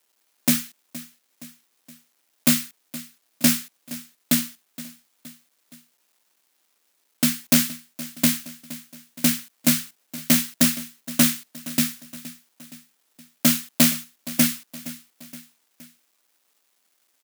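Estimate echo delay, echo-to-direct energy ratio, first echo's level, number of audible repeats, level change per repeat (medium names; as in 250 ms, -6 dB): 469 ms, -15.5 dB, -17.0 dB, 3, -5.5 dB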